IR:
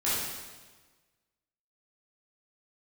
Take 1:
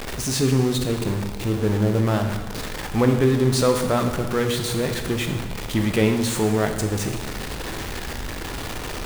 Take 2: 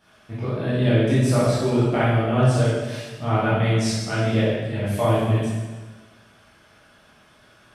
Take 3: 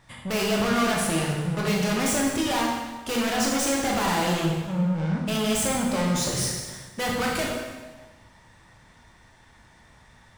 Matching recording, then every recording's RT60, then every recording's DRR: 2; 1.3, 1.3, 1.3 seconds; 4.5, −11.0, −2.5 decibels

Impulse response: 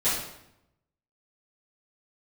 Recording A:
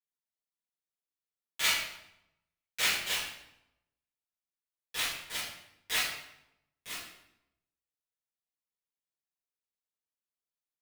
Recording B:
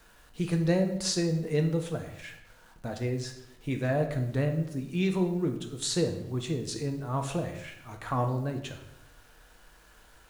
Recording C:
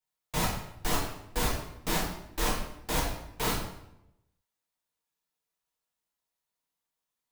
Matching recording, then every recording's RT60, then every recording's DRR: A; 0.80, 0.80, 0.80 seconds; −14.5, 4.0, −5.5 decibels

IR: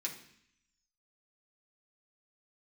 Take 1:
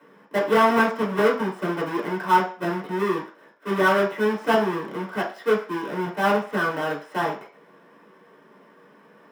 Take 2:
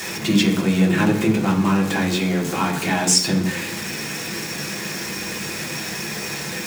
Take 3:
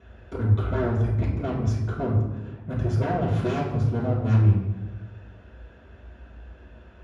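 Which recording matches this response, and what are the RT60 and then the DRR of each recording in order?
2; 0.40, 0.65, 1.2 seconds; −4.5, −2.5, −8.5 decibels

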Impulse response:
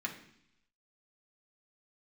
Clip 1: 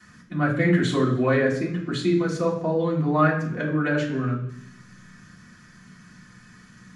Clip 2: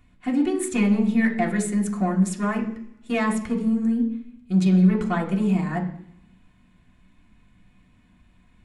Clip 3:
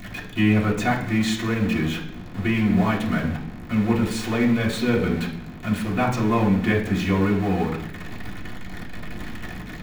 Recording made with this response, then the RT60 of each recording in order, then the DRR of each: 2; 0.70, 0.70, 0.70 seconds; −16.5, −1.5, −7.0 decibels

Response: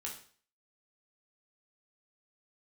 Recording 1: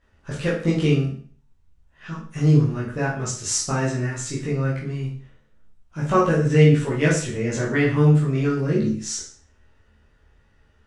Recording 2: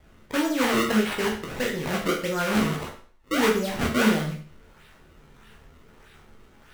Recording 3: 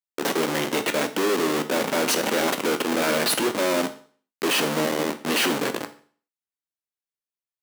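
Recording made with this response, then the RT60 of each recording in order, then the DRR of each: 2; 0.45, 0.45, 0.45 seconds; −7.5, −2.0, 8.0 decibels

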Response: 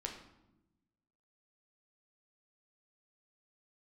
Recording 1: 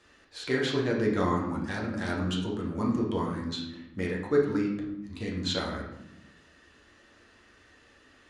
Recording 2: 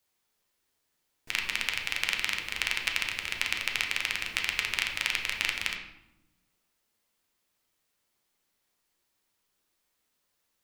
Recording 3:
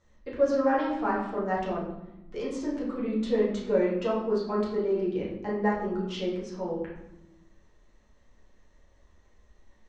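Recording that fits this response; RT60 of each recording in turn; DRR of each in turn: 2; 0.95, 0.95, 0.95 seconds; −3.0, 1.0, −7.0 decibels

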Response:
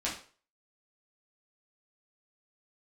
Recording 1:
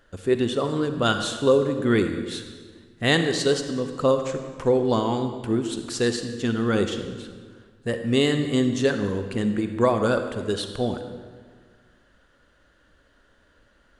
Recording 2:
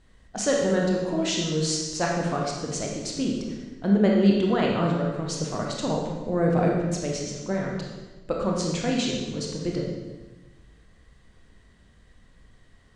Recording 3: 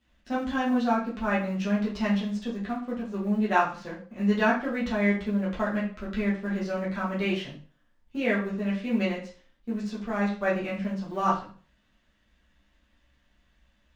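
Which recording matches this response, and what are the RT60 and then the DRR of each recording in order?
3; 1.7, 1.2, 0.40 seconds; 7.0, −1.5, −7.0 decibels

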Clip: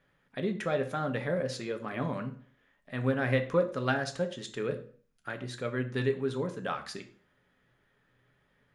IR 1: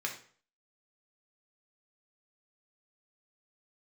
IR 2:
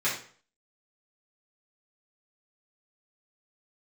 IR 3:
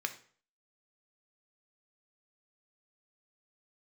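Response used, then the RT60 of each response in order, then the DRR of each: 3; 0.45, 0.45, 0.45 seconds; 0.0, −10.0, 6.0 decibels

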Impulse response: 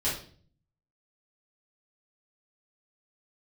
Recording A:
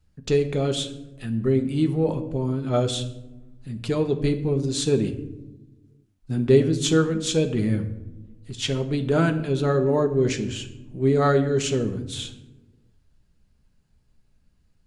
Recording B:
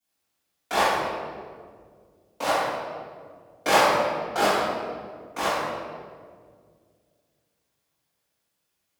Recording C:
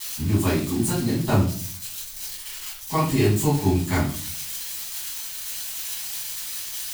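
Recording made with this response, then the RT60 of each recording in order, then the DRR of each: C; 1.0, 1.9, 0.45 seconds; 5.0, −16.0, −9.5 decibels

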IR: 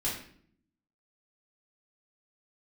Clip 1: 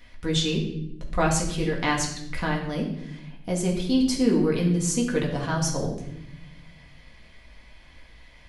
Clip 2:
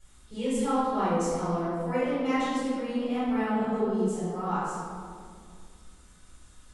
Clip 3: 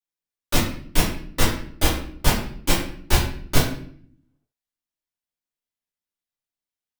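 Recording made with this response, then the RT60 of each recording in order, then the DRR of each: 3; 0.80, 2.2, 0.60 seconds; −2.5, −15.5, −8.0 decibels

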